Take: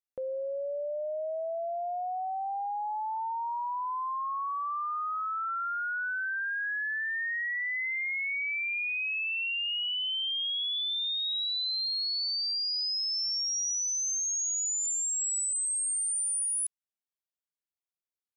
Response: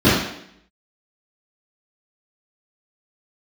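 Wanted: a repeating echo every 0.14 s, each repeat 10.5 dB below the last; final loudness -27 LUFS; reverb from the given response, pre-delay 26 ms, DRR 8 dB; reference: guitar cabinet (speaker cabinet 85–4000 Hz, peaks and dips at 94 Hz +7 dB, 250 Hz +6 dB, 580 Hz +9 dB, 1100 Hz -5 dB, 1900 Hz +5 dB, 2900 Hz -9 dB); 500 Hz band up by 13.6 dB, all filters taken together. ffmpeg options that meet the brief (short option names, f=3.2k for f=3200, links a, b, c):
-filter_complex "[0:a]equalizer=f=500:t=o:g=8.5,aecho=1:1:140|280|420:0.299|0.0896|0.0269,asplit=2[a][b];[1:a]atrim=start_sample=2205,adelay=26[c];[b][c]afir=irnorm=-1:irlink=0,volume=-33dB[d];[a][d]amix=inputs=2:normalize=0,highpass=85,equalizer=f=94:t=q:w=4:g=7,equalizer=f=250:t=q:w=4:g=6,equalizer=f=580:t=q:w=4:g=9,equalizer=f=1.1k:t=q:w=4:g=-5,equalizer=f=1.9k:t=q:w=4:g=5,equalizer=f=2.9k:t=q:w=4:g=-9,lowpass=f=4k:w=0.5412,lowpass=f=4k:w=1.3066,volume=-1dB"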